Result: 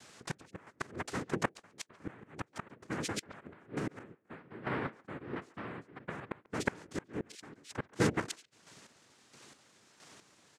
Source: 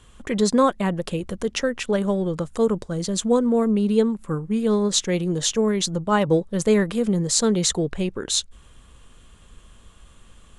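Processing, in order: bass shelf 320 Hz -6.5 dB; hum notches 50/100/150/200/250/300 Hz; peak limiter -16.5 dBFS, peak gain reduction 11 dB; compression 1.5:1, threshold -29 dBFS, peak gain reduction 3.5 dB; 4.14–6.31 s: ladder band-pass 390 Hz, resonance 40%; noise-vocoded speech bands 3; inverted gate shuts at -18 dBFS, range -27 dB; square tremolo 1.5 Hz, depth 60%, duty 30%; speakerphone echo 140 ms, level -21 dB; trim +2 dB

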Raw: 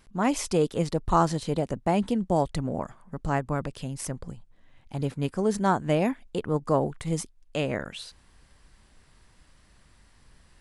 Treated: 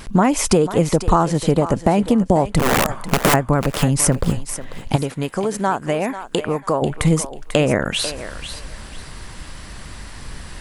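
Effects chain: vibrato 13 Hz 39 cents; 2.59–3.34 s: integer overflow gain 26.5 dB; dynamic bell 4.3 kHz, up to -6 dB, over -50 dBFS, Q 1.2; compression 10:1, threshold -35 dBFS, peak gain reduction 18.5 dB; 4.96–6.82 s: bass shelf 370 Hz -11 dB; on a send: thinning echo 493 ms, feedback 24%, high-pass 520 Hz, level -10.5 dB; on the sum: loudness maximiser +23 dB

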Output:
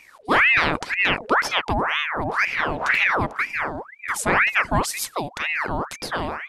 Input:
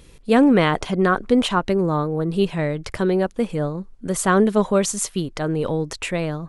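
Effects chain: 2.28–3.64 s: wind noise 260 Hz -23 dBFS; ring modulator with a swept carrier 1.4 kHz, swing 70%, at 2 Hz

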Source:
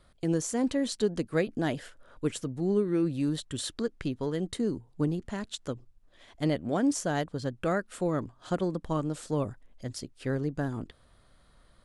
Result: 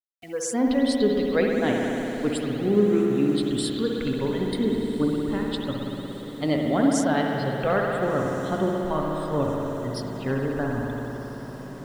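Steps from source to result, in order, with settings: spectral noise reduction 22 dB; spring tank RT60 3.6 s, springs 58 ms, chirp 50 ms, DRR -1 dB; bit crusher 10-bit; echo that smears into a reverb 1460 ms, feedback 58%, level -15 dB; trim +4.5 dB

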